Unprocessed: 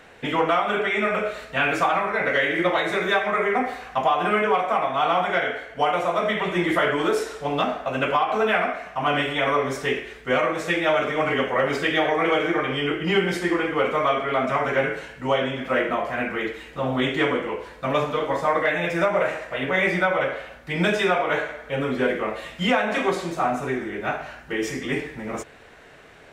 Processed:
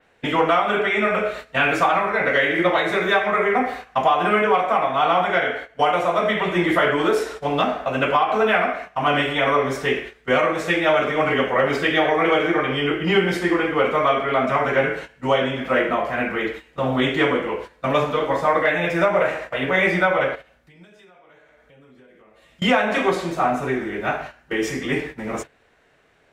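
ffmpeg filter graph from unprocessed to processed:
-filter_complex "[0:a]asettb=1/sr,asplit=3[a][b][c];[a]atrim=end=20.354[d];[b]atrim=start=20.35:end=22.62,asetpts=PTS-STARTPTS,afade=t=in:d=0.004:c=qsin,afade=t=out:st=2.266:d=0.004:c=qsin,acompressor=threshold=-35dB:ratio=5:attack=3.2:release=140:knee=1:detection=peak,equalizer=f=1.1k:w=0.32:g=-4.5[e];[c]atrim=start=22.616[f];[d][e]acrossfade=d=0.004:c1=hsin:c2=qsin[g];[g][f]acrossfade=d=0.004:c1=qsin:c2=hsin,adynamicequalizer=threshold=0.00447:dfrequency=7800:dqfactor=0.81:tfrequency=7800:tqfactor=0.81:attack=5:release=100:ratio=0.375:range=2:mode=cutabove:tftype=bell,agate=range=-14dB:threshold=-35dB:ratio=16:detection=peak,volume=3dB"

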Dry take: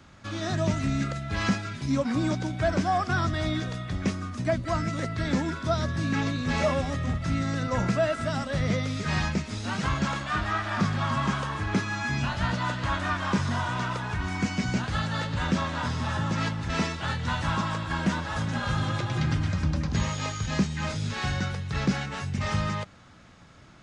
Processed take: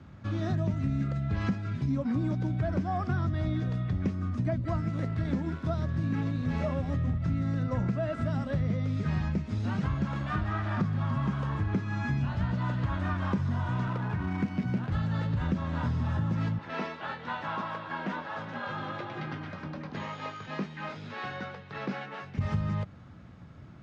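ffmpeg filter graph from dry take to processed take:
-filter_complex "[0:a]asettb=1/sr,asplit=3[a][b][c];[a]atrim=end=4.804[d];[b]atrim=start=4.8:end=6.9,asetpts=PTS-STARTPTS,afade=t=in:d=0.004:c=qsin,afade=t=out:st=2.096:d=0.004:c=qsin,bandreject=f=60:t=h:w=6,bandreject=f=120:t=h:w=6,bandreject=f=180:t=h:w=6,bandreject=f=240:t=h:w=6,bandreject=f=300:t=h:w=6,bandreject=f=360:t=h:w=6,bandreject=f=420:t=h:w=6,aeval=exprs='sgn(val(0))*max(abs(val(0))-0.00841,0)':c=same[e];[c]atrim=start=6.896[f];[d][e]acrossfade=d=0.004:c1=hsin:c2=qsin[g];[g][f]acrossfade=d=0.004:c1=qsin:c2=hsin,asettb=1/sr,asplit=3[h][i][j];[h]atrim=end=13.874[k];[i]atrim=start=13.87:end=14.92,asetpts=PTS-STARTPTS,afade=t=in:d=0.004:c=qsin,afade=t=out:st=1.046:d=0.004:c=qsin,highpass=120,highshelf=f=4k:g=10.5,adynamicsmooth=sensitivity=3.5:basefreq=1.2k[l];[j]atrim=start=14.916[m];[k][l]acrossfade=d=0.004:c1=hsin:c2=qsin[n];[n][m]acrossfade=d=0.004:c1=qsin:c2=hsin,asettb=1/sr,asplit=3[o][p][q];[o]atrim=end=16.584[r];[p]atrim=start=16.58:end=22.38,asetpts=PTS-STARTPTS,afade=t=in:d=0.004:c=qsin,afade=t=out:st=5.796:d=0.004:c=qsin,highpass=460,lowpass=4.1k,asplit=2[s][t];[t]adelay=20,volume=-11dB[u];[s][u]amix=inputs=2:normalize=0,atrim=end_sample=255780[v];[q]atrim=start=22.376[w];[r][v]acrossfade=d=0.004:c1=hsin:c2=qsin[x];[x][w]acrossfade=d=0.004:c1=qsin:c2=hsin,highpass=100,aemphasis=mode=reproduction:type=riaa,acompressor=threshold=-23dB:ratio=4,volume=-3.5dB"

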